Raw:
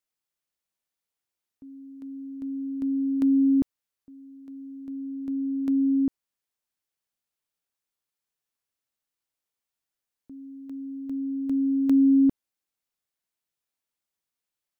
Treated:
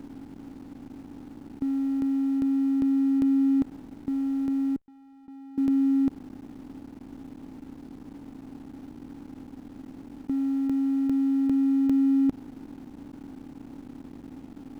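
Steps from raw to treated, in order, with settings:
compressor on every frequency bin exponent 0.2
0:04.76–0:05.58: downward expander −9 dBFS
slack as between gear wheels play −34 dBFS
level −3.5 dB

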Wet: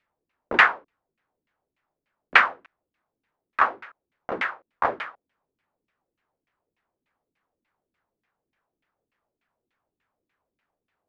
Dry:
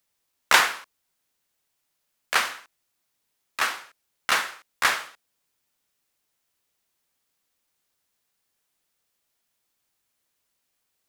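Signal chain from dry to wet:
auto-filter low-pass saw down 3.4 Hz 240–2,500 Hz
level +3 dB

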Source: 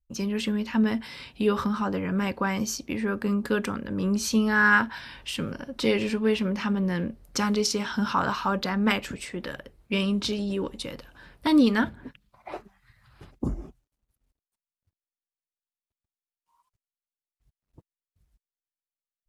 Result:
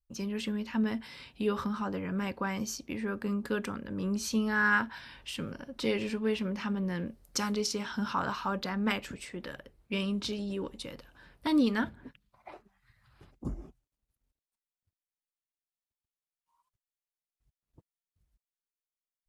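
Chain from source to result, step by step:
0:07.06–0:07.52: bass and treble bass −2 dB, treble +6 dB
0:12.50–0:13.45: downward compressor 2 to 1, threshold −46 dBFS, peak gain reduction 12 dB
level −6.5 dB

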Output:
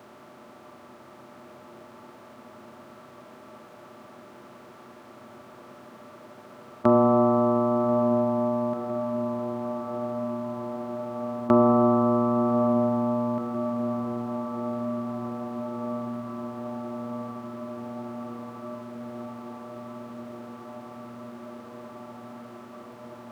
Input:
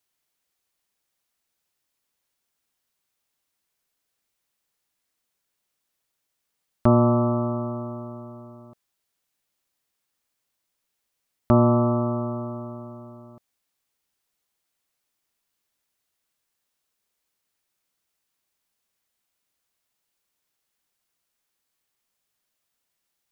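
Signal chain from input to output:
compressor on every frequency bin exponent 0.4
high-pass filter 220 Hz 12 dB per octave
on a send: feedback delay with all-pass diffusion 1,177 ms, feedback 80%, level −10 dB
on the sum: spring reverb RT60 3.6 s, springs 31/37 ms, chirp 55 ms, DRR 6 dB

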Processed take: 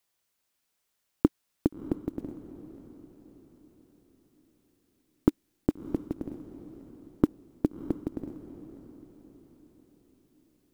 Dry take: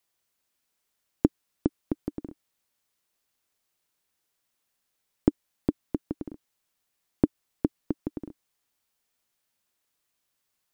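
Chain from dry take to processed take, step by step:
one scale factor per block 7 bits
hard clipping −7 dBFS, distortion −23 dB
feedback delay with all-pass diffusion 646 ms, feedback 42%, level −13.5 dB

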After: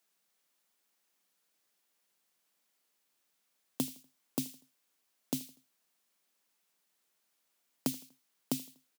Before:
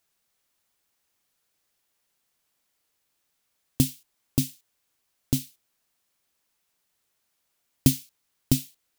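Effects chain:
downward compressor 5 to 1, threshold −25 dBFS, peak gain reduction 11.5 dB
Butterworth high-pass 160 Hz 48 dB per octave
on a send: repeating echo 81 ms, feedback 45%, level −22.5 dB
on the sum: level −2.5 dB

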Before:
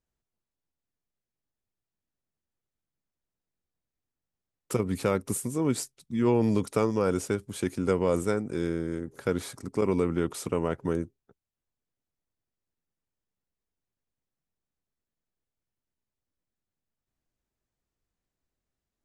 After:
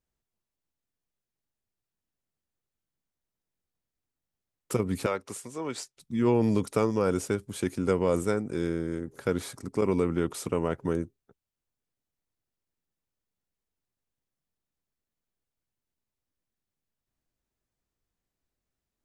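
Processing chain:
0:05.06–0:05.97: three-way crossover with the lows and the highs turned down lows −14 dB, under 460 Hz, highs −15 dB, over 7,100 Hz

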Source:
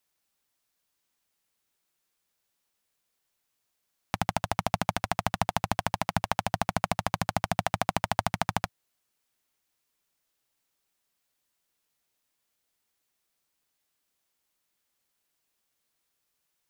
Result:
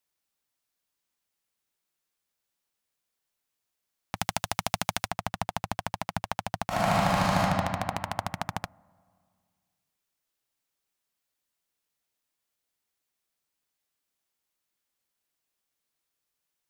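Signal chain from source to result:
0:04.16–0:05.08: high-shelf EQ 2,100 Hz +11.5 dB
0:06.68–0:07.40: thrown reverb, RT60 2.2 s, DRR −10 dB
level −4.5 dB

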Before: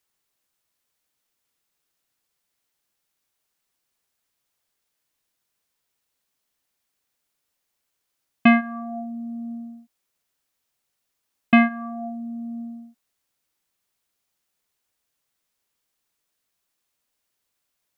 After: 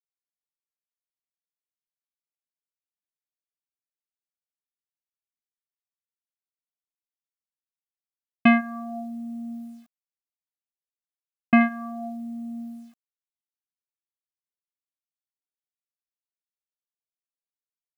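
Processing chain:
0:08.58–0:11.61: parametric band 3,500 Hz −14.5 dB 0.45 octaves
bit reduction 10 bits
level −2 dB

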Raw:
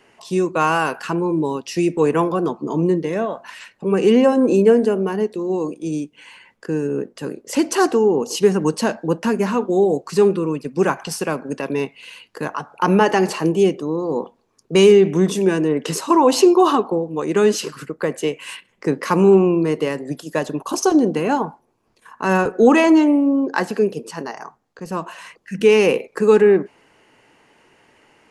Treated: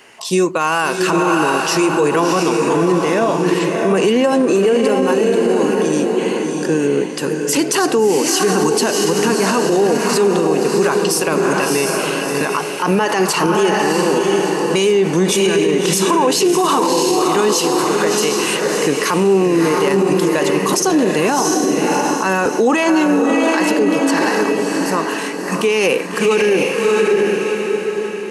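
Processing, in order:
spectral tilt +2 dB per octave
feedback delay with all-pass diffusion 671 ms, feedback 42%, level −4 dB
boost into a limiter +14.5 dB
level −5.5 dB

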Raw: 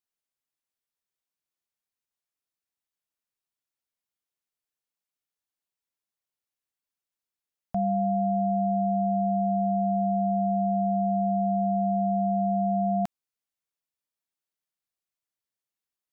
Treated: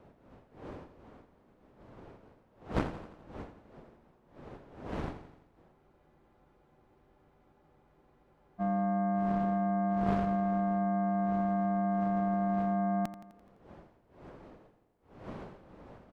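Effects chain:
wind on the microphone 560 Hz −43 dBFS
dynamic equaliser 600 Hz, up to −4 dB, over −38 dBFS, Q 0.78
harmonic generator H 2 −29 dB, 3 −14 dB, 6 −44 dB, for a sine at −17.5 dBFS
on a send: repeating echo 85 ms, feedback 57%, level −12.5 dB
on the sum: frozen spectrum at 0:05.77, 2.83 s
level +2.5 dB

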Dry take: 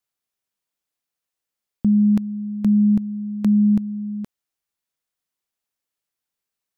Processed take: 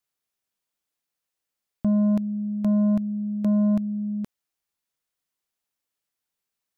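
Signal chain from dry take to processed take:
soft clipping −17.5 dBFS, distortion −13 dB

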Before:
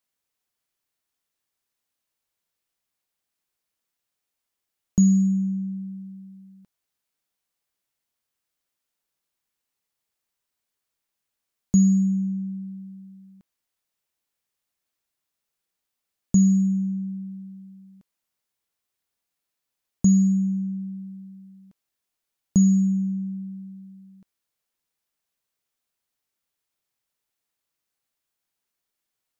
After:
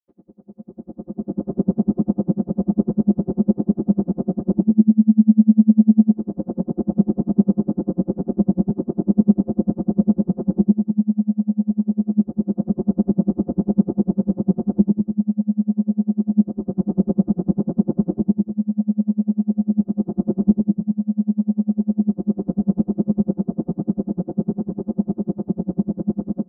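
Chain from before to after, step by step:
compressor on every frequency bin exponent 0.2
source passing by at 0:10.50, 5 m/s, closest 5.4 metres
camcorder AGC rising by 18 dB per second
Gaussian smoothing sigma 8.6 samples
low-shelf EQ 80 Hz −11.5 dB
mains-hum notches 50/100/150/200 Hz
comb filter 6.3 ms, depth 82%
speed change +11%
convolution reverb RT60 1.2 s, pre-delay 77 ms
tremolo with a sine in dB 10 Hz, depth 36 dB
level −9.5 dB

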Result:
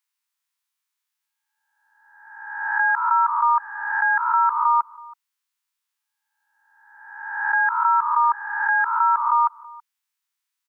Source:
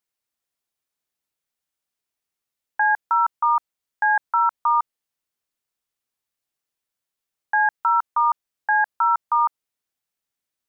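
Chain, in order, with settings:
peak hold with a rise ahead of every peak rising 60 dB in 1.21 s
elliptic high-pass filter 910 Hz, stop band 40 dB
slap from a distant wall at 56 metres, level −22 dB
level +1 dB

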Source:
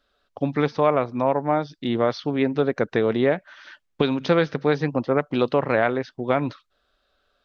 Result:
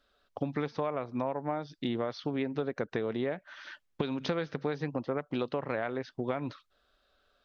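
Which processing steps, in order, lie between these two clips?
downward compressor, threshold −27 dBFS, peak gain reduction 13 dB
level −2 dB

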